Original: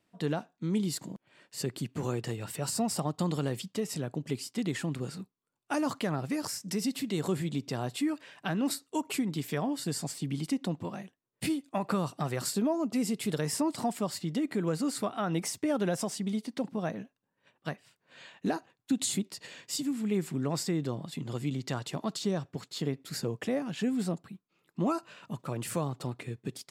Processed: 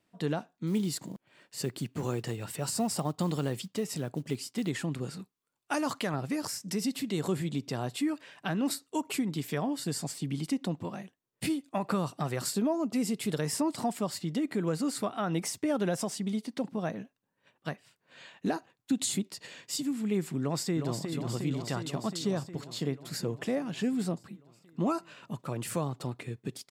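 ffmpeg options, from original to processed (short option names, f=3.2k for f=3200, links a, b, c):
-filter_complex "[0:a]asplit=3[a][b][c];[a]afade=t=out:st=0.66:d=0.02[d];[b]acrusher=bits=7:mode=log:mix=0:aa=0.000001,afade=t=in:st=0.66:d=0.02,afade=t=out:st=4.68:d=0.02[e];[c]afade=t=in:st=4.68:d=0.02[f];[d][e][f]amix=inputs=3:normalize=0,asettb=1/sr,asplit=3[g][h][i];[g]atrim=end=5.194[j];[h]atrim=start=5.19:end=6.14,asetpts=PTS-STARTPTS,afade=t=in:d=0.004:c=qsin,afade=t=out:st=0.946:d=0.004:c=qsin,tiltshelf=f=630:g=-3[k];[i]atrim=start=6.136[l];[j][k]acrossfade=d=0.004:c1=hsin:c2=qsin[m];[m][l]acrossfade=d=0.004:c1=qsin:c2=hsin,asplit=2[n][o];[o]afade=t=in:st=20.4:d=0.01,afade=t=out:st=21.05:d=0.01,aecho=0:1:360|720|1080|1440|1800|2160|2520|2880|3240|3600|3960|4320:0.501187|0.37589|0.281918|0.211438|0.158579|0.118934|0.0892006|0.0669004|0.0501753|0.0376315|0.0282236|0.0211677[p];[n][p]amix=inputs=2:normalize=0"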